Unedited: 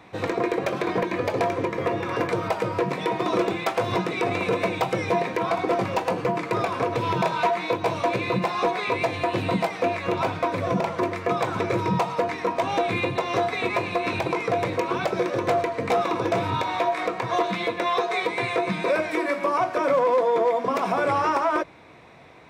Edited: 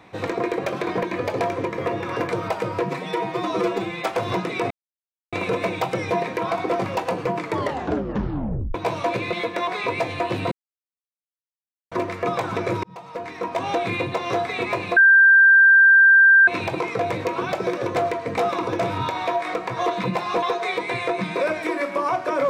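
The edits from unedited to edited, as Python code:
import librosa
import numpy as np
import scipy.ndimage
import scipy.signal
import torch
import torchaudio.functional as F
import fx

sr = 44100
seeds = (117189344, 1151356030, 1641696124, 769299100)

y = fx.edit(x, sr, fx.stretch_span(start_s=2.9, length_s=0.77, factor=1.5),
    fx.insert_silence(at_s=4.32, length_s=0.62),
    fx.tape_stop(start_s=6.44, length_s=1.3),
    fx.swap(start_s=8.32, length_s=0.39, other_s=17.56, other_length_s=0.35),
    fx.silence(start_s=9.55, length_s=1.4),
    fx.fade_in_span(start_s=11.87, length_s=0.84),
    fx.insert_tone(at_s=14.0, length_s=1.51, hz=1580.0, db=-9.0), tone=tone)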